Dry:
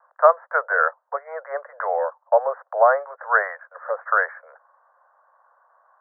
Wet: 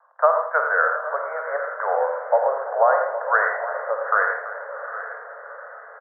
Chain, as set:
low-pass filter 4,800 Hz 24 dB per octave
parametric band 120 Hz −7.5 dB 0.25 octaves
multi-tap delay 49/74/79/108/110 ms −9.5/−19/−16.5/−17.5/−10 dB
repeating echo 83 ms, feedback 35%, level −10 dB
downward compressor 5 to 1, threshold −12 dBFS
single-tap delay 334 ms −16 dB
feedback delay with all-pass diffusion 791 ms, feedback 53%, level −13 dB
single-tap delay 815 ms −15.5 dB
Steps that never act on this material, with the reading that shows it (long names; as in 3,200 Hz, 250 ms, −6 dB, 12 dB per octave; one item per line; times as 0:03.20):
low-pass filter 4,800 Hz: nothing at its input above 2,000 Hz
parametric band 120 Hz: nothing at its input below 400 Hz